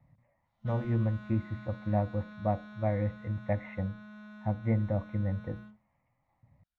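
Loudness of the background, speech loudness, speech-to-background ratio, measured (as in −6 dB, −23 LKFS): −48.5 LKFS, −33.0 LKFS, 15.5 dB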